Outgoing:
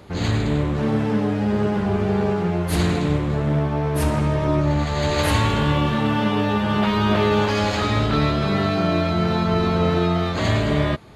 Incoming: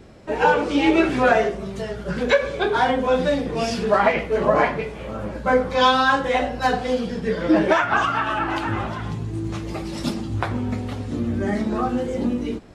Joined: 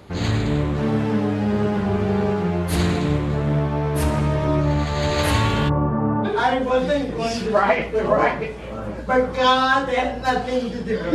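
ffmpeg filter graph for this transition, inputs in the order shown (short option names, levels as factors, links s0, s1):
-filter_complex "[0:a]asplit=3[s0][s1][s2];[s0]afade=t=out:st=5.68:d=0.02[s3];[s1]lowpass=f=1200:w=0.5412,lowpass=f=1200:w=1.3066,afade=t=in:st=5.68:d=0.02,afade=t=out:st=6.34:d=0.02[s4];[s2]afade=t=in:st=6.34:d=0.02[s5];[s3][s4][s5]amix=inputs=3:normalize=0,apad=whole_dur=11.14,atrim=end=11.14,atrim=end=6.34,asetpts=PTS-STARTPTS[s6];[1:a]atrim=start=2.59:end=7.51,asetpts=PTS-STARTPTS[s7];[s6][s7]acrossfade=d=0.12:c1=tri:c2=tri"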